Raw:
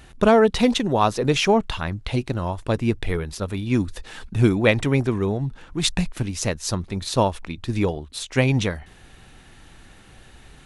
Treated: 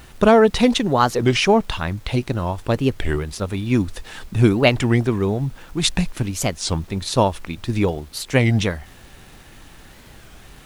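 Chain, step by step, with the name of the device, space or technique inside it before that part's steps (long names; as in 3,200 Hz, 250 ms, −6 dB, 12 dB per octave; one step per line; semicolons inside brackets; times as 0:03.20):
warped LP (wow of a warped record 33 1/3 rpm, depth 250 cents; surface crackle; pink noise bed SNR 31 dB)
level +2.5 dB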